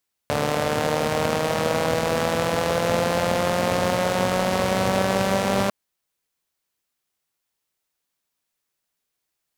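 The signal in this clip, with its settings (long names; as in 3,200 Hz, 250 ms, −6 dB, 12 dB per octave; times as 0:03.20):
pulse-train model of a four-cylinder engine, changing speed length 5.40 s, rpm 4,400, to 5,900, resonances 120/220/500 Hz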